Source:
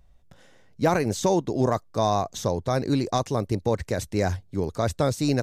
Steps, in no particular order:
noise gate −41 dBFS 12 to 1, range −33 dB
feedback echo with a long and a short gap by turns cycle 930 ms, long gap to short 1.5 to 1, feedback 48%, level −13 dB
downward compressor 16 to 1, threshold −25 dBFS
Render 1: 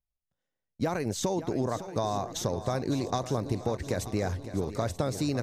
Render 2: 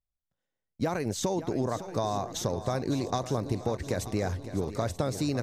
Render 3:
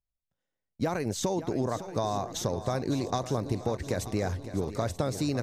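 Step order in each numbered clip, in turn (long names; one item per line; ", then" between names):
downward compressor, then noise gate, then feedback echo with a long and a short gap by turns
downward compressor, then feedback echo with a long and a short gap by turns, then noise gate
noise gate, then downward compressor, then feedback echo with a long and a short gap by turns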